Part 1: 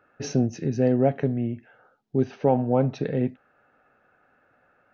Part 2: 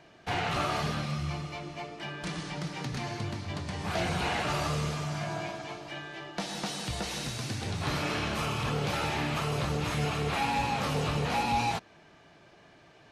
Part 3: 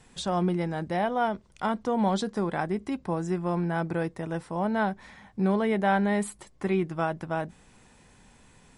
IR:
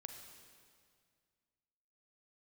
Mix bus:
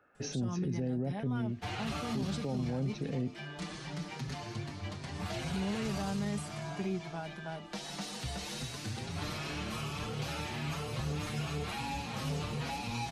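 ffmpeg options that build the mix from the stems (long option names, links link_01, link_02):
-filter_complex "[0:a]volume=-5dB[link_01];[1:a]asplit=2[link_02][link_03];[link_03]adelay=6,afreqshift=2.5[link_04];[link_02][link_04]amix=inputs=2:normalize=1,adelay=1350,volume=-1.5dB[link_05];[2:a]aecho=1:1:4.9:0.69,adelay=150,volume=-10.5dB,asplit=3[link_06][link_07][link_08];[link_06]atrim=end=3.21,asetpts=PTS-STARTPTS,afade=type=out:start_time=3.206:duration=0.004:curve=hsin[link_09];[link_07]atrim=start=3.21:end=5.34,asetpts=PTS-STARTPTS,volume=0[link_10];[link_08]atrim=start=5.34,asetpts=PTS-STARTPTS,afade=type=in:duration=0.004:curve=hsin[link_11];[link_09][link_10][link_11]concat=n=3:v=0:a=1[link_12];[link_01][link_05][link_12]amix=inputs=3:normalize=0,acrossover=split=280|3000[link_13][link_14][link_15];[link_14]acompressor=threshold=-44dB:ratio=2[link_16];[link_13][link_16][link_15]amix=inputs=3:normalize=0,alimiter=level_in=2.5dB:limit=-24dB:level=0:latency=1:release=18,volume=-2.5dB"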